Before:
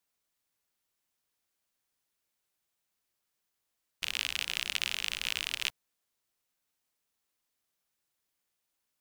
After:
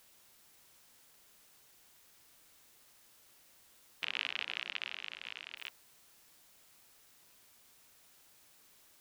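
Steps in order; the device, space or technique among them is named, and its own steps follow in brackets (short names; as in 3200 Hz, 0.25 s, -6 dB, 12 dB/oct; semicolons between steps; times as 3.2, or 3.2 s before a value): shortwave radio (BPF 280–2800 Hz; tremolo 0.27 Hz, depth 70%; white noise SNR 15 dB); 4.04–5.57 LPF 5600 Hz 12 dB/oct; gain +1.5 dB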